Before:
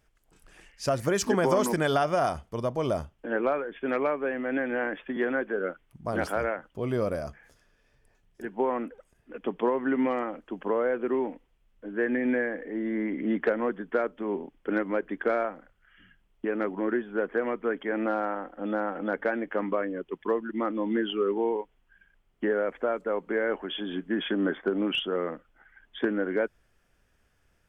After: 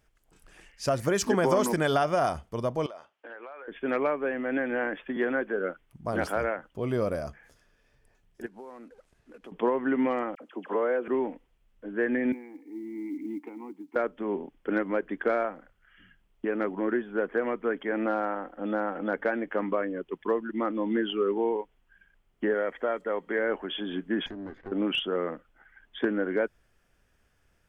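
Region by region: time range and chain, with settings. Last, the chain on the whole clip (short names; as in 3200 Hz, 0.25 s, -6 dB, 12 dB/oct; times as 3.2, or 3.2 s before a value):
2.86–3.68 BPF 690–4600 Hz + compressor 10:1, threshold -39 dBFS
8.46–9.52 CVSD 64 kbps + high shelf 8300 Hz -9.5 dB + compressor 2.5:1, threshold -50 dBFS
10.35–11.08 HPF 250 Hz + dispersion lows, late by 53 ms, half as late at 1700 Hz
12.32–13.96 vowel filter u + companded quantiser 8-bit
22.54–23.39 low shelf 320 Hz -4.5 dB + small resonant body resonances 1900/3200 Hz, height 11 dB, ringing for 25 ms
24.26–24.72 minimum comb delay 0.49 ms + LPF 1000 Hz 6 dB/oct + compressor 2:1, threshold -45 dBFS
whole clip: dry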